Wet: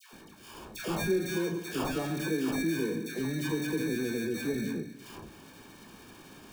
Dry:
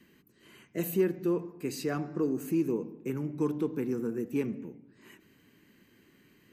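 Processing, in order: in parallel at +2 dB: compressor with a negative ratio -39 dBFS, ratio -1; on the sum: sample-and-hold 22×; feedback comb 53 Hz, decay 0.33 s, harmonics all, mix 60%; phase dispersion lows, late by 128 ms, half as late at 940 Hz; tape noise reduction on one side only encoder only; trim +1 dB

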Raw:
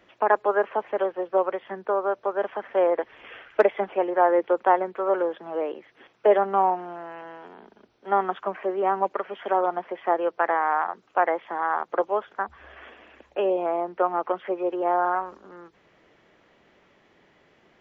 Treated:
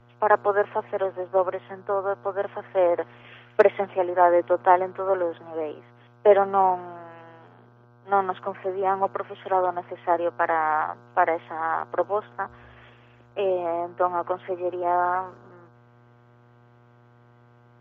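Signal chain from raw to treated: mains buzz 120 Hz, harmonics 13, -48 dBFS -3 dB/octave; three bands expanded up and down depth 40%

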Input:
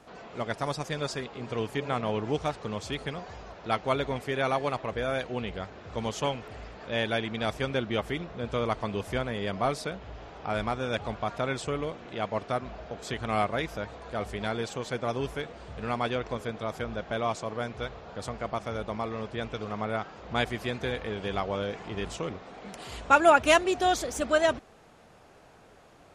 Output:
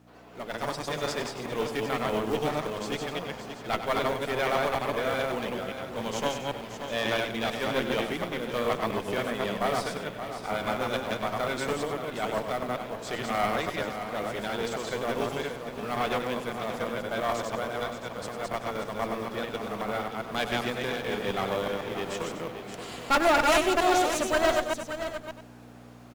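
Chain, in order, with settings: chunks repeated in reverse 133 ms, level -3 dB; companded quantiser 6-bit; hum 60 Hz, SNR 12 dB; high-pass 160 Hz 12 dB/octave; valve stage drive 22 dB, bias 0.75; delay 575 ms -9.5 dB; level rider gain up to 8 dB; delay 97 ms -10 dB; trim -4 dB

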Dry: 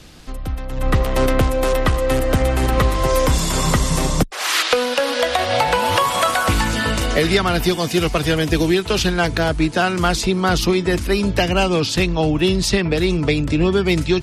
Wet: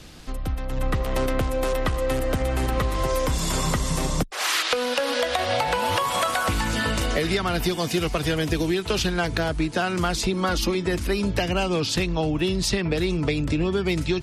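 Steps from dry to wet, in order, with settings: 10.33–10.75 s: comb 3.6 ms; compression 4:1, threshold -19 dBFS, peak gain reduction 8 dB; trim -1.5 dB

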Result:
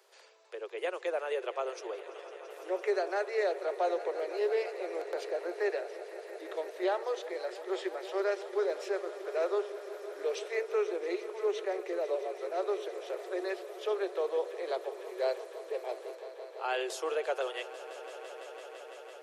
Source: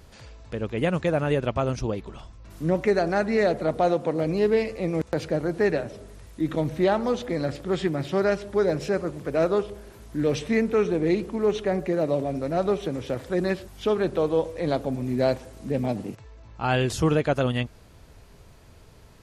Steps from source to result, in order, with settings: steep high-pass 360 Hz 96 dB/octave; echo with a slow build-up 168 ms, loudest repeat 5, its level -18 dB; trim -8 dB

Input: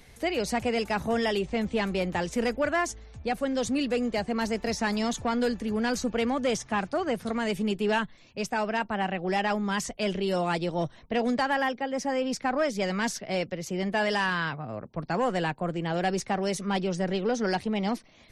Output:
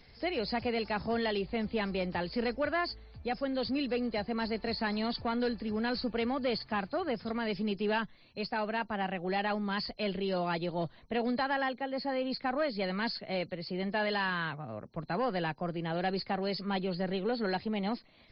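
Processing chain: knee-point frequency compression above 4 kHz 4:1; trim -5 dB

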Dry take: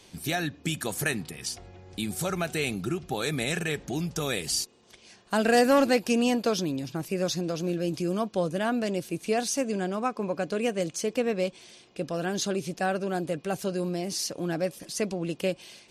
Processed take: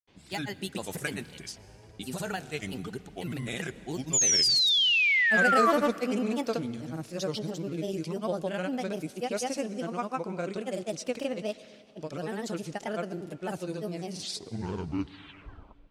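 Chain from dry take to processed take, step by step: tape stop on the ending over 2.09 s; level-controlled noise filter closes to 2.7 kHz, open at -26 dBFS; granulator, pitch spread up and down by 3 st; painted sound fall, 4.13–5.71 s, 1.1–7.2 kHz -20 dBFS; on a send: reverberation RT60 2.2 s, pre-delay 108 ms, DRR 18 dB; on the sum: trim -3.5 dB

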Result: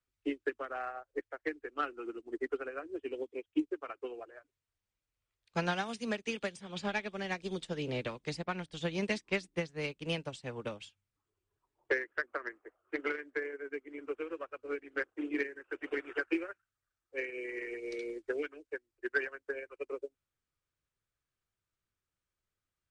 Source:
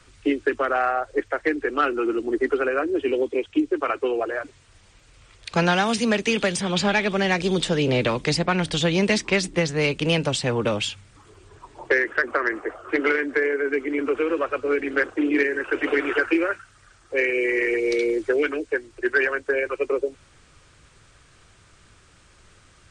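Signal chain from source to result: upward expansion 2.5:1, over -35 dBFS; trim -8.5 dB

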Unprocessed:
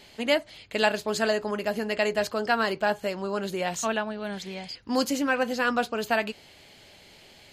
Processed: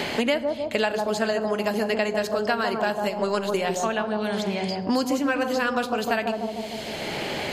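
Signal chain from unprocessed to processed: 3.04–3.61 s: transient shaper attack +12 dB, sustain -9 dB; bucket-brigade echo 150 ms, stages 1024, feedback 42%, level -3.5 dB; reverberation RT60 0.60 s, pre-delay 43 ms, DRR 16 dB; three bands compressed up and down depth 100%

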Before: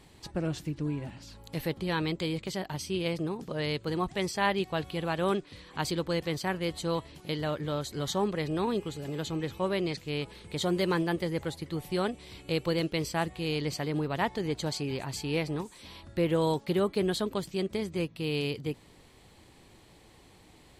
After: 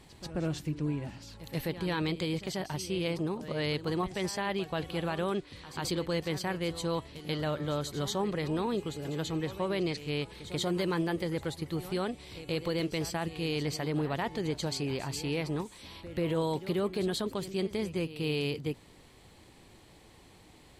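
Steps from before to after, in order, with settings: peak limiter -22.5 dBFS, peak gain reduction 9 dB; pre-echo 137 ms -14 dB

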